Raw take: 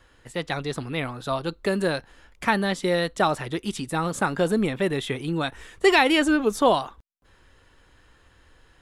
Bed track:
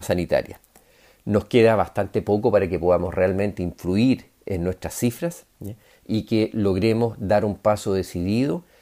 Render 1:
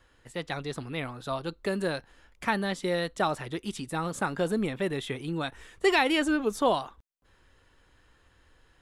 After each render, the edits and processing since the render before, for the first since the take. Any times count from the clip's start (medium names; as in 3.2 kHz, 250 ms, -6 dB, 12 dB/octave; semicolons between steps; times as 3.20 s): trim -5.5 dB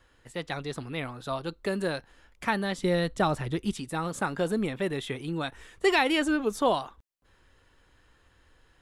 2.78–3.73 s: bass shelf 210 Hz +11.5 dB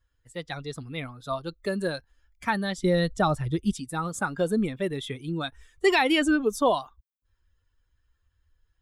expander on every frequency bin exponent 1.5; in parallel at -0.5 dB: peak limiter -21.5 dBFS, peak gain reduction 8.5 dB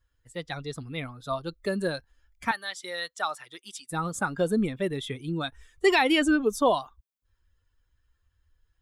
2.51–3.91 s: high-pass 1.1 kHz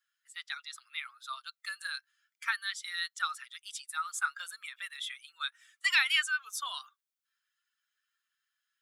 elliptic high-pass 1.3 kHz, stop band 80 dB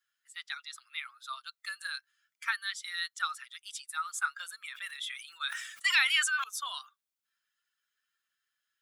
4.60–6.44 s: decay stretcher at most 59 dB/s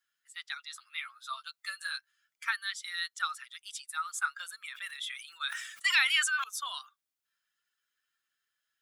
0.70–1.97 s: doubling 12 ms -5 dB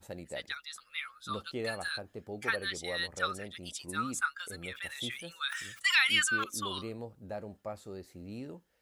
add bed track -21.5 dB